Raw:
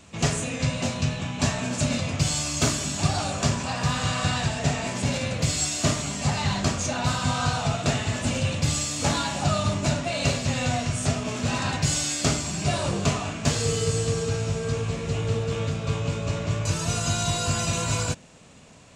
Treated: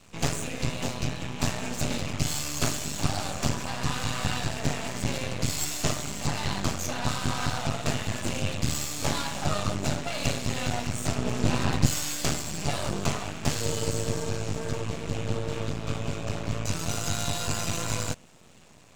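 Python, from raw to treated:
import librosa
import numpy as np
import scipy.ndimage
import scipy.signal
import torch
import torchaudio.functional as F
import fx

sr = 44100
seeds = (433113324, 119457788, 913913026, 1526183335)

y = fx.low_shelf(x, sr, hz=470.0, db=7.5, at=(11.18, 11.87))
y = np.maximum(y, 0.0)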